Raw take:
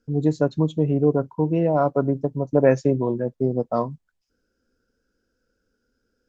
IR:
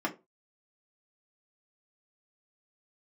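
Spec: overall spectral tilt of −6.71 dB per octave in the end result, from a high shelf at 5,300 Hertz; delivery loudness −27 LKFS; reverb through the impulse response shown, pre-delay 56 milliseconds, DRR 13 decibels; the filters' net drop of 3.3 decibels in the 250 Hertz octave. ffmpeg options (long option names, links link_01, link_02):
-filter_complex "[0:a]equalizer=frequency=250:width_type=o:gain=-4.5,highshelf=frequency=5300:gain=3.5,asplit=2[link_01][link_02];[1:a]atrim=start_sample=2205,adelay=56[link_03];[link_02][link_03]afir=irnorm=-1:irlink=0,volume=-20dB[link_04];[link_01][link_04]amix=inputs=2:normalize=0,volume=-3.5dB"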